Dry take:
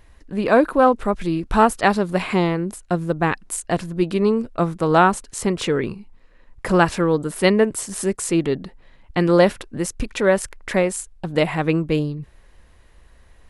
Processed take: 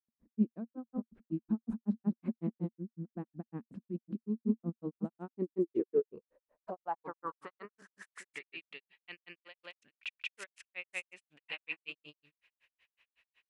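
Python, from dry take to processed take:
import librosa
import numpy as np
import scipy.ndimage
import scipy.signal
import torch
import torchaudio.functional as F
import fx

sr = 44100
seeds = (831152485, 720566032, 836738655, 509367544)

y = x + 10.0 ** (-5.0 / 20.0) * np.pad(x, (int(184 * sr / 1000.0), 0))[:len(x)]
y = fx.over_compress(y, sr, threshold_db=-20.0, ratio=-1.0)
y = fx.granulator(y, sr, seeds[0], grain_ms=100.0, per_s=5.4, spray_ms=100.0, spread_st=0)
y = fx.filter_sweep_bandpass(y, sr, from_hz=230.0, to_hz=2600.0, start_s=5.11, end_s=8.61, q=5.7)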